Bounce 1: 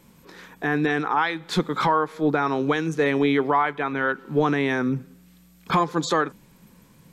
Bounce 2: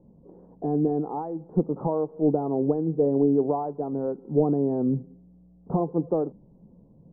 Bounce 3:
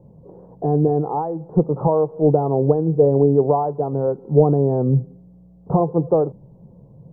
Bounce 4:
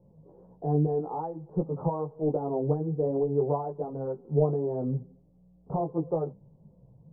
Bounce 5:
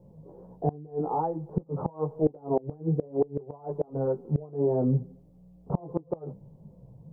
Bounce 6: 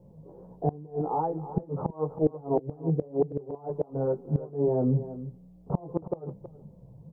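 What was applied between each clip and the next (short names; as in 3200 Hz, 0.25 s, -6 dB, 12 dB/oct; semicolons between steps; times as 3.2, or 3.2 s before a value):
steep low-pass 730 Hz 36 dB/oct
graphic EQ 125/250/500/1000 Hz +11/-7/+5/+4 dB; gain +4.5 dB
chorus voices 4, 0.49 Hz, delay 16 ms, depth 4.6 ms; gain -8 dB
flipped gate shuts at -19 dBFS, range -25 dB; gain +5.5 dB
echo 0.323 s -14 dB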